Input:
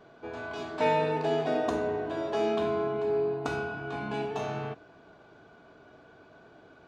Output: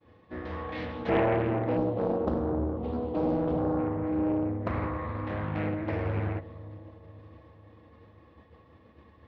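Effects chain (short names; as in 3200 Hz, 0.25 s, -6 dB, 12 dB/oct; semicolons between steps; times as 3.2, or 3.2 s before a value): treble ducked by the level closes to 1900 Hz, closed at -27.5 dBFS; thirty-one-band EQ 100 Hz +12 dB, 2500 Hz +9 dB, 5000 Hz +7 dB; speed mistake 45 rpm record played at 33 rpm; bell 93 Hz +7 dB 0.99 oct; expander -47 dBFS; on a send: dark delay 0.498 s, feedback 52%, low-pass 780 Hz, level -16 dB; on the sum: spectral gain 1.77–3.79, 1100–2700 Hz -15 dB; Doppler distortion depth 0.75 ms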